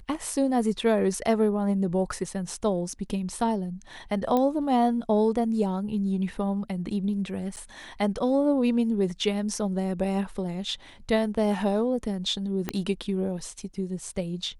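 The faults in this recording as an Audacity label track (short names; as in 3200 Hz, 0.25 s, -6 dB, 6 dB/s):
4.370000	4.370000	pop -14 dBFS
7.560000	7.570000	gap 8.4 ms
12.690000	12.690000	pop -13 dBFS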